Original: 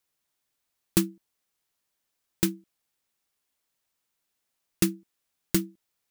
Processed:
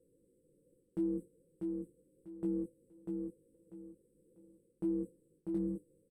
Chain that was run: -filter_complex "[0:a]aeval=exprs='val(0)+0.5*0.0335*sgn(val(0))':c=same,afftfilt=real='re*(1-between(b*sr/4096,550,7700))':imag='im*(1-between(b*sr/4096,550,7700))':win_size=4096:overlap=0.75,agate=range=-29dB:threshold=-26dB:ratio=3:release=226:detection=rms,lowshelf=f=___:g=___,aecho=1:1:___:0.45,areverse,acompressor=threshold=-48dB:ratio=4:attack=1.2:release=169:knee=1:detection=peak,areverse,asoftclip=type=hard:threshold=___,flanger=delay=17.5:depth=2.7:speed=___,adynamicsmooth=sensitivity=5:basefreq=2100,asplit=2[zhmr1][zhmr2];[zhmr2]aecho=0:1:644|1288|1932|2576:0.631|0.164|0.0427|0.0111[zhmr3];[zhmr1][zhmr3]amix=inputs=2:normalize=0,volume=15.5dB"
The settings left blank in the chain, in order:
170, -10.5, 6.1, -39dB, 0.78